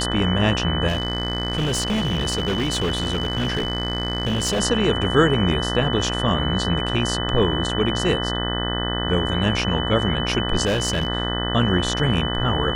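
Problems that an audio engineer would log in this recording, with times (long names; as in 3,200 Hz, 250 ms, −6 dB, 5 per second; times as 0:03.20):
mains buzz 60 Hz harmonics 33 −26 dBFS
whistle 3,000 Hz −27 dBFS
0:00.87–0:04.61: clipping −18 dBFS
0:10.65–0:11.08: clipping −17 dBFS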